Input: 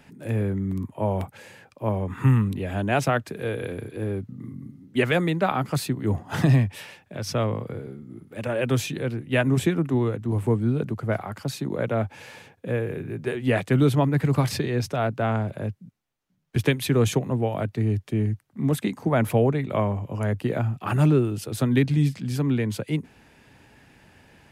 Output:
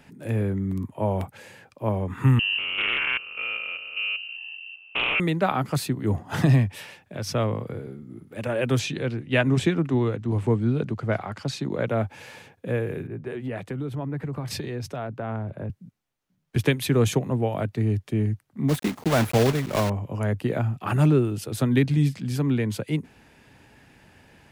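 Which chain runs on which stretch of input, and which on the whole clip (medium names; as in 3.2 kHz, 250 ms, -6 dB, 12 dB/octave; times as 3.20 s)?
2.39–5.20 s: spectrogram pixelated in time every 200 ms + frequency inversion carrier 2.9 kHz + loudspeaker Doppler distortion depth 0.18 ms
8.79–11.89 s: low-pass 5.2 kHz + treble shelf 3.4 kHz +7 dB
13.07–15.70 s: compression 8:1, threshold -26 dBFS + treble shelf 2.6 kHz -7.5 dB + three bands expanded up and down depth 70%
18.69–19.90 s: block-companded coder 3-bit + treble shelf 5.5 kHz -4 dB
whole clip: none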